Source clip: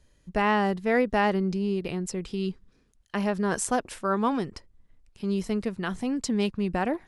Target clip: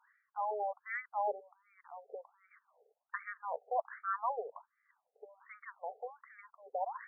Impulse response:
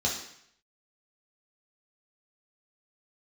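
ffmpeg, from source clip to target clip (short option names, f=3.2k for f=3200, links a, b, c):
-af "areverse,acompressor=threshold=-38dB:ratio=8,areverse,afftfilt=real='re*between(b*sr/1024,570*pow(1700/570,0.5+0.5*sin(2*PI*1.3*pts/sr))/1.41,570*pow(1700/570,0.5+0.5*sin(2*PI*1.3*pts/sr))*1.41)':imag='im*between(b*sr/1024,570*pow(1700/570,0.5+0.5*sin(2*PI*1.3*pts/sr))/1.41,570*pow(1700/570,0.5+0.5*sin(2*PI*1.3*pts/sr))*1.41)':win_size=1024:overlap=0.75,volume=10dB"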